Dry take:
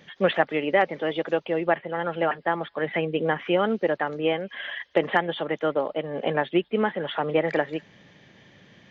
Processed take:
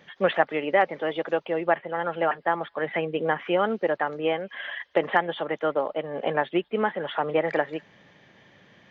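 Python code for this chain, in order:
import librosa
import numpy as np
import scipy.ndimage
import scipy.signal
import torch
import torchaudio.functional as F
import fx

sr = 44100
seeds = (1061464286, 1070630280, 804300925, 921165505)

y = fx.peak_eq(x, sr, hz=1000.0, db=6.5, octaves=2.5)
y = F.gain(torch.from_numpy(y), -5.0).numpy()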